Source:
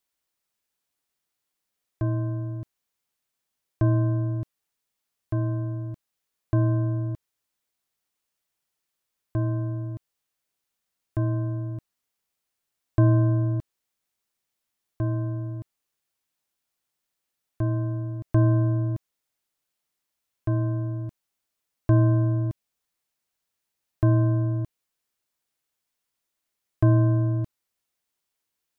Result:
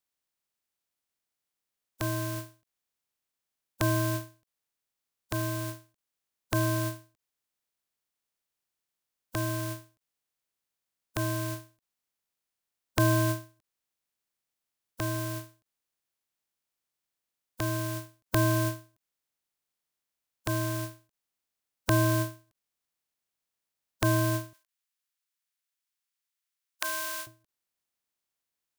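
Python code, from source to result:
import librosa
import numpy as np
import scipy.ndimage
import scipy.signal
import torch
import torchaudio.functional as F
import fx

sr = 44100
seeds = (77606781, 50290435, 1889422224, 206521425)

y = fx.spec_flatten(x, sr, power=0.38)
y = fx.highpass(y, sr, hz=1300.0, slope=12, at=(24.53, 27.27))
y = fx.end_taper(y, sr, db_per_s=180.0)
y = y * librosa.db_to_amplitude(-5.0)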